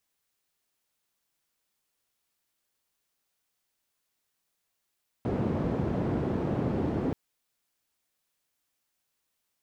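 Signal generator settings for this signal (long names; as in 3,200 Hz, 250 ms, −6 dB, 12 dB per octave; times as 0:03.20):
band-limited noise 83–310 Hz, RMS −29 dBFS 1.88 s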